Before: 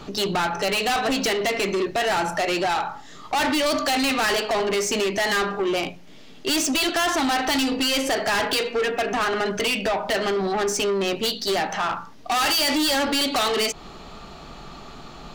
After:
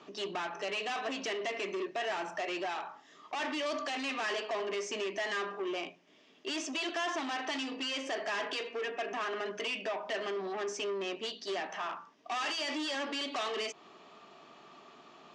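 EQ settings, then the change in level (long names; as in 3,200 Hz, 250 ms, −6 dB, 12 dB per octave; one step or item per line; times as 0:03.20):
loudspeaker in its box 460–6,700 Hz, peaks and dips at 510 Hz −8 dB, 820 Hz −9 dB, 1,400 Hz −8 dB, 2,100 Hz −3 dB, 4,200 Hz −8 dB
high-shelf EQ 3,100 Hz −9.5 dB
−5.5 dB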